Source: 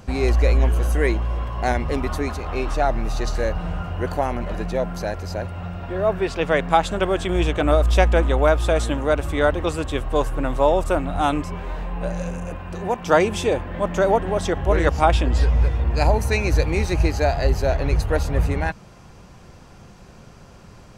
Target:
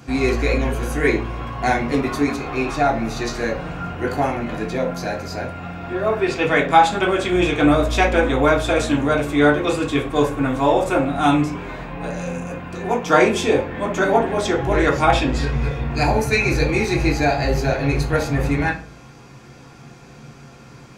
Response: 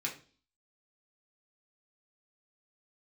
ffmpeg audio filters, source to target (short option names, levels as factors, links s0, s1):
-filter_complex "[1:a]atrim=start_sample=2205[s0];[0:a][s0]afir=irnorm=-1:irlink=0,volume=1.26"